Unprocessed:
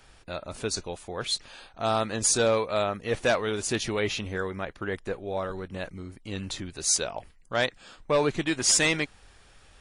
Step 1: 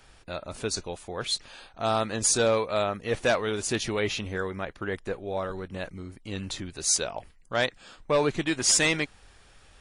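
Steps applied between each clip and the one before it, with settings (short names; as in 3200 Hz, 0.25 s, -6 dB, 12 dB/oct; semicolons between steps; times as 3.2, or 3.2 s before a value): nothing audible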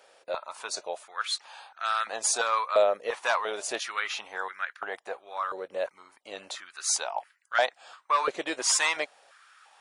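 stepped high-pass 2.9 Hz 540–1500 Hz; gain -3 dB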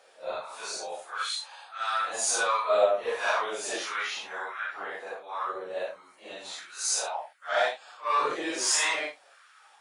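phase scrambler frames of 0.2 s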